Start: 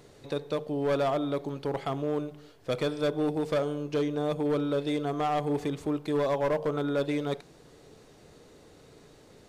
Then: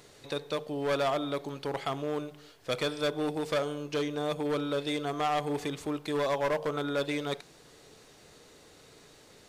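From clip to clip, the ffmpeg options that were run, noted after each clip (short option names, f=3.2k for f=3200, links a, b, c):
-af "tiltshelf=f=900:g=-5"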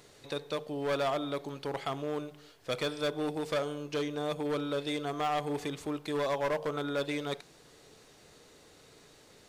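-af "asoftclip=type=hard:threshold=-19.5dB,volume=-2dB"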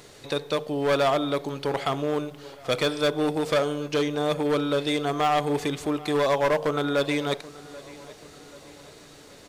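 -filter_complex "[0:a]asplit=2[a][b];[b]adelay=783,lowpass=f=4k:p=1,volume=-20dB,asplit=2[c][d];[d]adelay=783,lowpass=f=4k:p=1,volume=0.51,asplit=2[e][f];[f]adelay=783,lowpass=f=4k:p=1,volume=0.51,asplit=2[g][h];[h]adelay=783,lowpass=f=4k:p=1,volume=0.51[i];[a][c][e][g][i]amix=inputs=5:normalize=0,volume=8.5dB"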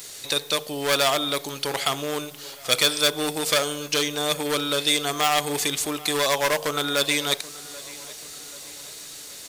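-af "crystalizer=i=10:c=0,volume=-4.5dB"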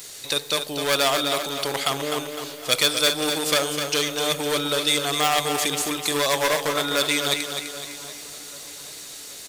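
-af "aecho=1:1:254|508|762|1016|1270:0.447|0.197|0.0865|0.0381|0.0167"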